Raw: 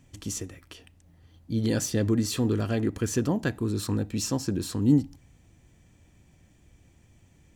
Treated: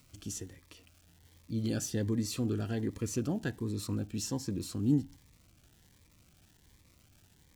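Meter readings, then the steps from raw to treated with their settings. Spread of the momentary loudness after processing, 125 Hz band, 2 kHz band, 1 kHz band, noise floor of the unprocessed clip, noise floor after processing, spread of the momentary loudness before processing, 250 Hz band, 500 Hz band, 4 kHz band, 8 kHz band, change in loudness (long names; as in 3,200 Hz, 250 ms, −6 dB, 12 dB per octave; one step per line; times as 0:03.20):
11 LU, −6.5 dB, −8.5 dB, −9.5 dB, −60 dBFS, −65 dBFS, 11 LU, −7.0 dB, −8.5 dB, −7.0 dB, −6.5 dB, −7.0 dB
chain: surface crackle 460 per second −44 dBFS
phaser whose notches keep moving one way rising 1.3 Hz
level −6.5 dB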